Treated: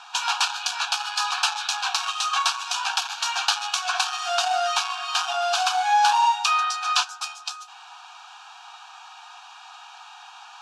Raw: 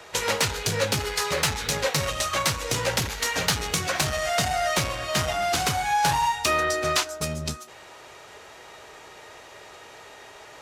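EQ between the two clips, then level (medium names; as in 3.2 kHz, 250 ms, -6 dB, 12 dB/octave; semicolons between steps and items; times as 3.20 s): brick-wall FIR high-pass 690 Hz; Butterworth band-stop 2 kHz, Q 2.7; low-pass 5.3 kHz 12 dB/octave; +4.5 dB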